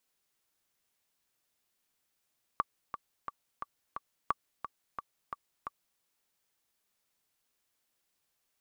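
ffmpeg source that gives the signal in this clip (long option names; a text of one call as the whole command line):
ffmpeg -f lavfi -i "aevalsrc='pow(10,(-14.5-10*gte(mod(t,5*60/176),60/176))/20)*sin(2*PI*1150*mod(t,60/176))*exp(-6.91*mod(t,60/176)/0.03)':duration=3.4:sample_rate=44100" out.wav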